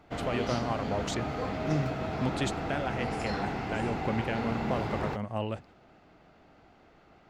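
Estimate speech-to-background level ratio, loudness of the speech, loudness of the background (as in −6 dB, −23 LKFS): −1.0 dB, −35.0 LKFS, −34.0 LKFS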